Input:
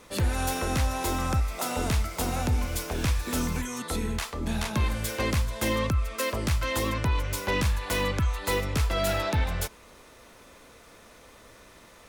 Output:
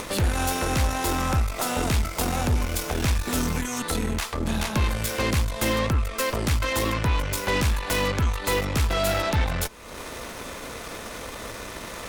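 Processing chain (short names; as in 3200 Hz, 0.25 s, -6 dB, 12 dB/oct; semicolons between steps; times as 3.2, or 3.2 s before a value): upward compressor, threshold -26 dBFS; added harmonics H 6 -17 dB, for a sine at -17 dBFS; gain +2.5 dB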